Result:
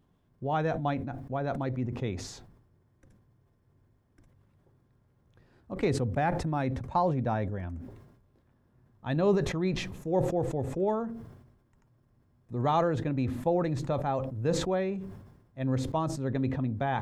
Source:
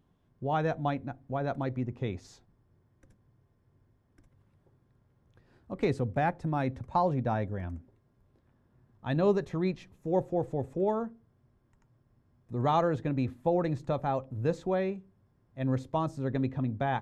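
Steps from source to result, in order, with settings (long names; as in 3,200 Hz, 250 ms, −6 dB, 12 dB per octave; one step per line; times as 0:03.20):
level that may fall only so fast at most 58 dB per second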